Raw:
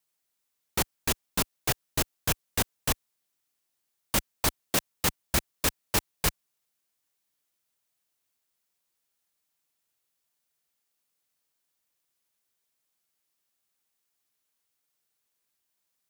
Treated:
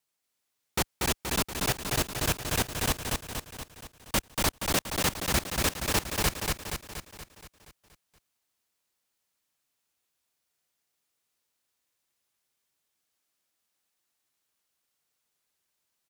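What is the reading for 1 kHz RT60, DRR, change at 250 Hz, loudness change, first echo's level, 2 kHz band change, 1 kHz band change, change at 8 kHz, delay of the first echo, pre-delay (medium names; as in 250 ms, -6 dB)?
no reverb, no reverb, +2.5 dB, 0.0 dB, -3.0 dB, +2.0 dB, +2.5 dB, +0.5 dB, 237 ms, no reverb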